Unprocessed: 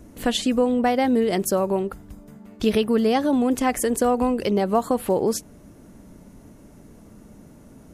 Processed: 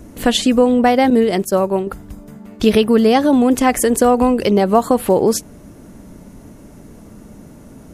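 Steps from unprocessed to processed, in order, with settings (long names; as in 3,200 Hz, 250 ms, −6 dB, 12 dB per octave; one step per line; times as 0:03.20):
0:01.10–0:01.87: downward expander −18 dBFS
level +7.5 dB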